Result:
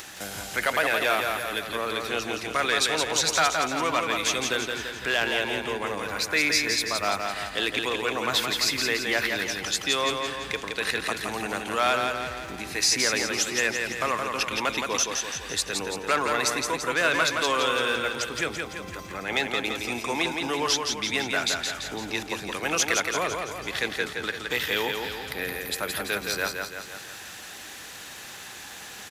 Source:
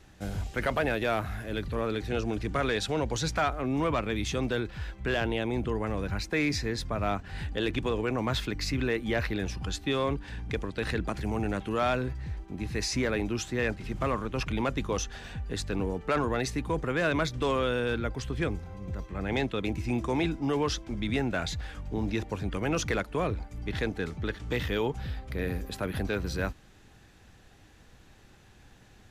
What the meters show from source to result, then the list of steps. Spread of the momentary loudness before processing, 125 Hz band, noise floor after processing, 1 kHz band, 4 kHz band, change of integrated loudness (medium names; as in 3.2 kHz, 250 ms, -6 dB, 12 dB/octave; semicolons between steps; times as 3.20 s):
7 LU, -10.0 dB, -41 dBFS, +6.5 dB, +11.5 dB, +5.0 dB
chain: high-pass 1.3 kHz 6 dB/octave; treble shelf 8.2 kHz +9 dB; upward compressor, threshold -40 dBFS; feedback delay 169 ms, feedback 54%, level -4.5 dB; trim +8.5 dB